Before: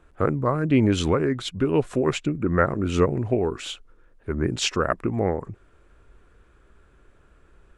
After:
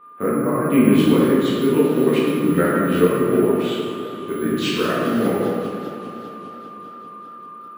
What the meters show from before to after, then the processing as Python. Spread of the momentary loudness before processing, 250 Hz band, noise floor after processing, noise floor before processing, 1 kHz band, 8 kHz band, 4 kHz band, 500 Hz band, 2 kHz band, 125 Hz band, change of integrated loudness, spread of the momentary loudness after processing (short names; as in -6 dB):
12 LU, +7.5 dB, -38 dBFS, -57 dBFS, +4.0 dB, 0.0 dB, +2.0 dB, +6.0 dB, +4.0 dB, 0.0 dB, +5.0 dB, 21 LU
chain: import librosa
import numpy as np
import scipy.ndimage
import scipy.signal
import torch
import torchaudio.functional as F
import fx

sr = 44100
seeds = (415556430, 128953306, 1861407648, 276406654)

y = fx.peak_eq(x, sr, hz=820.0, db=-8.5, octaves=1.5)
y = (np.kron(scipy.signal.resample_poly(y, 1, 4), np.eye(4)[0]) * 4)[:len(y)]
y = scipy.signal.sosfilt(scipy.signal.butter(4, 170.0, 'highpass', fs=sr, output='sos'), y)
y = y + 10.0 ** (-47.0 / 20.0) * np.sin(2.0 * np.pi * 1200.0 * np.arange(len(y)) / sr)
y = fx.air_absorb(y, sr, metres=210.0)
y = fx.echo_feedback(y, sr, ms=504, feedback_pct=43, wet_db=-20.5)
y = fx.rev_plate(y, sr, seeds[0], rt60_s=2.1, hf_ratio=0.55, predelay_ms=0, drr_db=-8.0)
y = fx.echo_warbled(y, sr, ms=199, feedback_pct=78, rate_hz=2.8, cents=202, wet_db=-15.5)